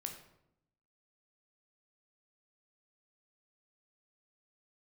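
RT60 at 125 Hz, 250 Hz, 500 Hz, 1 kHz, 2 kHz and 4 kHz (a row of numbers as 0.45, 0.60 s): 1.1, 1.0, 0.85, 0.75, 0.60, 0.50 s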